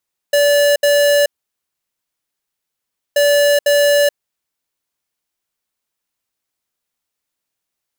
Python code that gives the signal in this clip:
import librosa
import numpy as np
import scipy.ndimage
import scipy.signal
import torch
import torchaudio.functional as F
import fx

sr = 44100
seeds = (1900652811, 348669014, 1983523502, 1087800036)

y = fx.beep_pattern(sr, wave='square', hz=578.0, on_s=0.43, off_s=0.07, beeps=2, pause_s=1.9, groups=2, level_db=-12.0)